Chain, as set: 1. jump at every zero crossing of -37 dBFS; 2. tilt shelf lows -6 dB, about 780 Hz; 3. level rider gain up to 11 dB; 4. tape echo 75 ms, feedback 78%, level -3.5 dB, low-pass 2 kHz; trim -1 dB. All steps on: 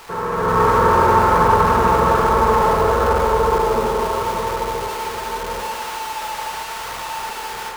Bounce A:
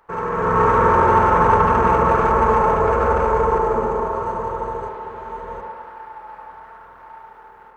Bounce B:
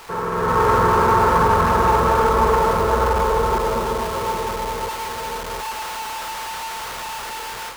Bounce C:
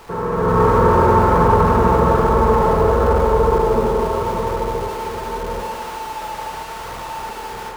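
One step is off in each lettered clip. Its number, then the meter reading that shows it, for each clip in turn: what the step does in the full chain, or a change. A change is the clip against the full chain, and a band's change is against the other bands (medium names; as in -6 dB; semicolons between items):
1, distortion -18 dB; 4, loudness change -2.0 LU; 2, 125 Hz band +8.0 dB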